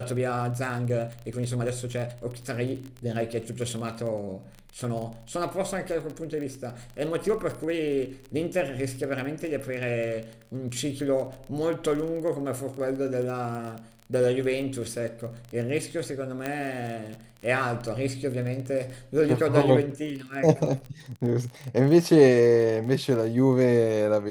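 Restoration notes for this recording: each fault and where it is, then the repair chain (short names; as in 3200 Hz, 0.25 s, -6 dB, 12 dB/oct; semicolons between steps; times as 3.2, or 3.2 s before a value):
crackle 21/s -32 dBFS
16.46 pop -16 dBFS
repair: de-click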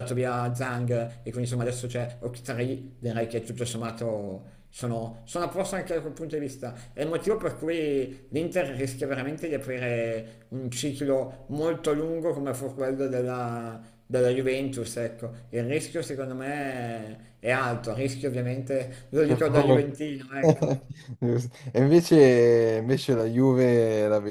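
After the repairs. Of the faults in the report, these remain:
none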